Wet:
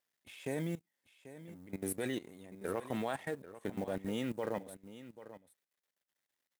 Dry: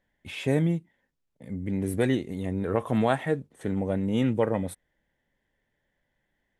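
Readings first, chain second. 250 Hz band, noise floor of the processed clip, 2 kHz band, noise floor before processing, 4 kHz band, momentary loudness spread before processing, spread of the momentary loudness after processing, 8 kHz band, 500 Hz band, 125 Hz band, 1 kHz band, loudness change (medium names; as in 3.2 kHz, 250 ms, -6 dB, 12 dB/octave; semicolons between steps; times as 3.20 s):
-13.0 dB, under -85 dBFS, -9.0 dB, -78 dBFS, -8.5 dB, 8 LU, 16 LU, -1.5 dB, -11.0 dB, -16.0 dB, -10.5 dB, -12.0 dB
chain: companding laws mixed up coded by A; high-pass 360 Hz 6 dB/octave; treble shelf 6 kHz +8.5 dB; level held to a coarse grid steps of 17 dB; on a send: delay 789 ms -14.5 dB; on the sum: trim -2 dB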